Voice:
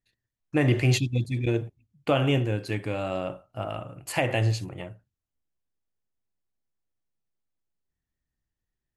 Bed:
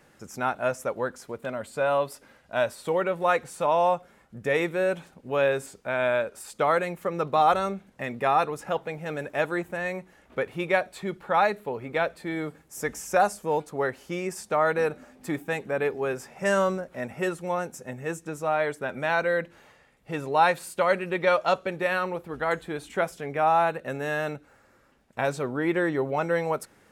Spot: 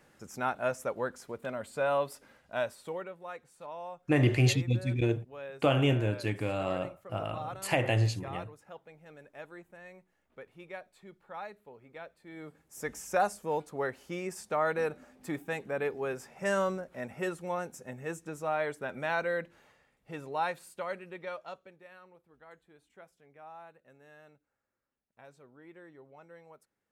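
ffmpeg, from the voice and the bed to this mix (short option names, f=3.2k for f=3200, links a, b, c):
-filter_complex "[0:a]adelay=3550,volume=-2.5dB[a];[1:a]volume=9.5dB,afade=t=out:st=2.37:d=0.8:silence=0.16788,afade=t=in:st=12.23:d=0.72:silence=0.199526,afade=t=out:st=19.05:d=2.77:silence=0.0841395[b];[a][b]amix=inputs=2:normalize=0"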